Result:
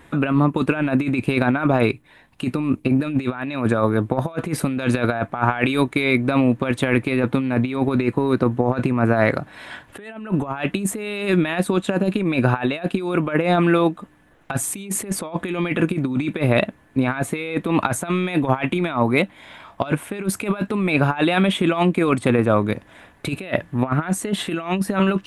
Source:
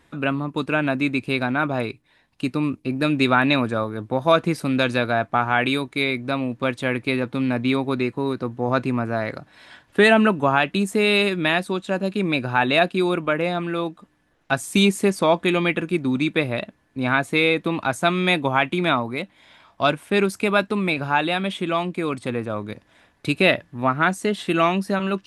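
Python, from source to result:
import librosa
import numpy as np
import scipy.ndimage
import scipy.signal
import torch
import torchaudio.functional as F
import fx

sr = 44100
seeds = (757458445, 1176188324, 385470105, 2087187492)

y = fx.peak_eq(x, sr, hz=5000.0, db=-9.0, octaves=0.94)
y = fx.over_compress(y, sr, threshold_db=-25.0, ratio=-0.5)
y = F.gain(torch.from_numpy(y), 6.0).numpy()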